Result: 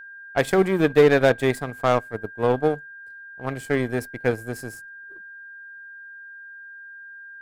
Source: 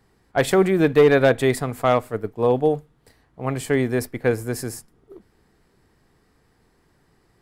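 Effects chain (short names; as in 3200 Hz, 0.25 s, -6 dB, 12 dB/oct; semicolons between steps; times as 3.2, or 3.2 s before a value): power-law curve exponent 1.4; whine 1600 Hz -39 dBFS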